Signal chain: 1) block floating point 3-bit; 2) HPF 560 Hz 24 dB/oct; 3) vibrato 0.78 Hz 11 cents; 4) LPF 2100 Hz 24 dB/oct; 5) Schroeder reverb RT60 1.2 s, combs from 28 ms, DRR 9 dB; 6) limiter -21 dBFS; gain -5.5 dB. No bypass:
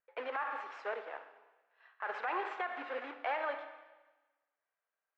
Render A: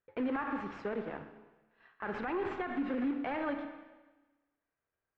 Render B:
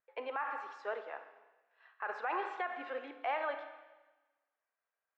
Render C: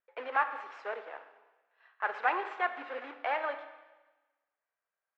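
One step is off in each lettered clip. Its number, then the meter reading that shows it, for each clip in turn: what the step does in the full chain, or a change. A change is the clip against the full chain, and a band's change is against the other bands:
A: 2, 250 Hz band +21.0 dB; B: 1, distortion -9 dB; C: 6, crest factor change +7.0 dB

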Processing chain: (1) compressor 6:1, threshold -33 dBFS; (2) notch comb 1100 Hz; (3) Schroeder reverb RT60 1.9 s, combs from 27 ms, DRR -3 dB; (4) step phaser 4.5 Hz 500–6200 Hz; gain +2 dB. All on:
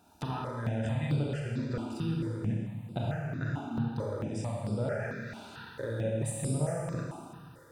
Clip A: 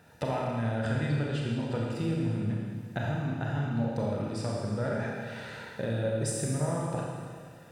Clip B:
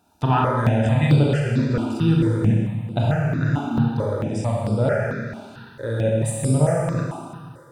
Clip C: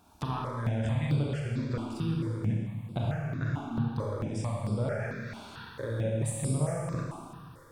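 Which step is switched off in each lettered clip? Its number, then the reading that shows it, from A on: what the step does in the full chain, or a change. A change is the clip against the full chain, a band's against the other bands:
4, 125 Hz band -2.0 dB; 1, mean gain reduction 10.5 dB; 2, loudness change +1.5 LU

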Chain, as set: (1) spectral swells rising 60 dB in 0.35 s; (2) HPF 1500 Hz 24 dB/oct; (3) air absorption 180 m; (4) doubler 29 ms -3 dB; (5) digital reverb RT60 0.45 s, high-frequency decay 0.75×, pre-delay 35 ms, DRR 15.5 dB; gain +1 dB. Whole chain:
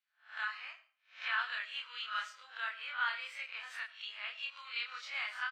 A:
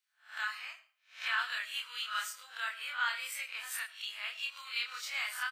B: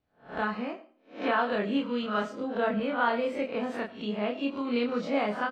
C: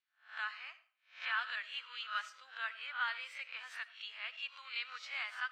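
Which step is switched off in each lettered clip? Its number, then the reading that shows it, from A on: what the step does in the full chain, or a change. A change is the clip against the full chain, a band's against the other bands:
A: 3, 8 kHz band +15.5 dB; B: 2, 500 Hz band +31.5 dB; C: 4, momentary loudness spread change +1 LU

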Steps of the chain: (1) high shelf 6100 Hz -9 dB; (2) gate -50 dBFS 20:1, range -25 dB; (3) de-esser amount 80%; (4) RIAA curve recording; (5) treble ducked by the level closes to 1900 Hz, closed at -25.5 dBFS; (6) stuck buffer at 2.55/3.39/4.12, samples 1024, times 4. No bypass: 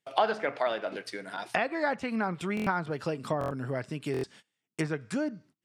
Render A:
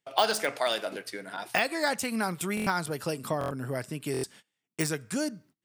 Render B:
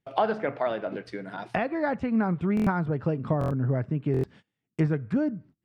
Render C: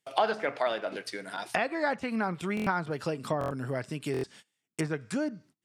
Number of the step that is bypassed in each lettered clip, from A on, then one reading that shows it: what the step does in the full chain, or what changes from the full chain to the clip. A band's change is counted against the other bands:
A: 5, 8 kHz band +14.0 dB; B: 4, 125 Hz band +9.0 dB; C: 1, 8 kHz band +3.0 dB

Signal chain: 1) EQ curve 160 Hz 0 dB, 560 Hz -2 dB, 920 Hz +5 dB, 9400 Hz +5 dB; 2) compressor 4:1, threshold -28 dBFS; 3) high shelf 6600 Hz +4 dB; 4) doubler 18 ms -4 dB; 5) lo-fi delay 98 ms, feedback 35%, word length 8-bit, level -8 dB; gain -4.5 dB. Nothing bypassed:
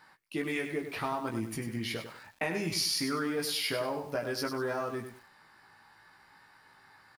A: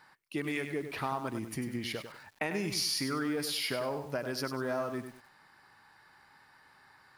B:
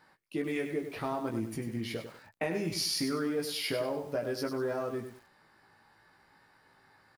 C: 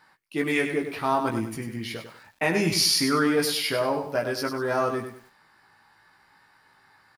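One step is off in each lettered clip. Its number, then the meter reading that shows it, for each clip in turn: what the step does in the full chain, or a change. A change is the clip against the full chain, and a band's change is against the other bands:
4, loudness change -1.0 LU; 1, 500 Hz band +4.0 dB; 2, mean gain reduction 5.0 dB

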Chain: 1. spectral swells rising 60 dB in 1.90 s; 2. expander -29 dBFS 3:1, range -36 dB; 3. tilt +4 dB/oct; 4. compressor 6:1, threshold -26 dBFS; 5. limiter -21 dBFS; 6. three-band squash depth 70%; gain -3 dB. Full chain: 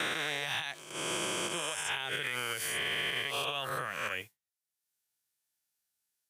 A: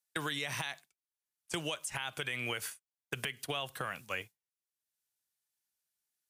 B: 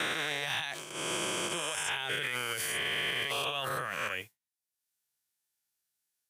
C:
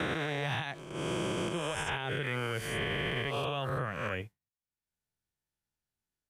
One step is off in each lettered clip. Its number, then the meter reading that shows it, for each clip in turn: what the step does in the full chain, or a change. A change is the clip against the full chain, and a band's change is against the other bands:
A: 1, 125 Hz band +7.0 dB; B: 4, mean gain reduction 8.5 dB; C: 3, 125 Hz band +13.0 dB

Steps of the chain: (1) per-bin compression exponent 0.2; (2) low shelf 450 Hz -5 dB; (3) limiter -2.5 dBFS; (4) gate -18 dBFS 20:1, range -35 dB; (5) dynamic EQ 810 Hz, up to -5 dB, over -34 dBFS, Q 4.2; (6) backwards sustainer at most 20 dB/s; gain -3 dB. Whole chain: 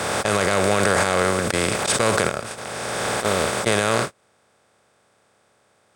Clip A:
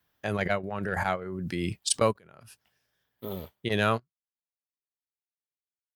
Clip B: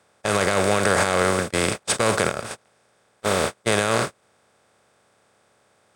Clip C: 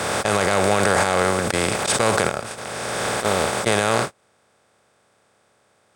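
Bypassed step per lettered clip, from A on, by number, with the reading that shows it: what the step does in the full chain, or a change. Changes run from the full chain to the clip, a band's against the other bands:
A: 1, 125 Hz band +4.5 dB; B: 6, crest factor change -3.0 dB; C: 5, 1 kHz band +1.5 dB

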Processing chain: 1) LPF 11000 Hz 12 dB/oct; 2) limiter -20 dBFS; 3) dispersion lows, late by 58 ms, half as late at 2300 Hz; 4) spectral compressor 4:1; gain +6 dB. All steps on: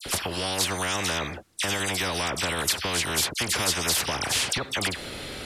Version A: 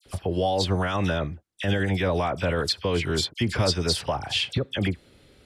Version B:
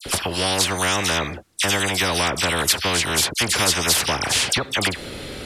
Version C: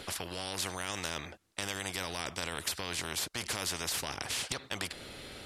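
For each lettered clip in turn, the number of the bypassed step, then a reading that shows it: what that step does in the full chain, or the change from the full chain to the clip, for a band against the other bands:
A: 4, 8 kHz band -15.0 dB; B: 2, mean gain reduction 2.5 dB; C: 3, crest factor change +6.5 dB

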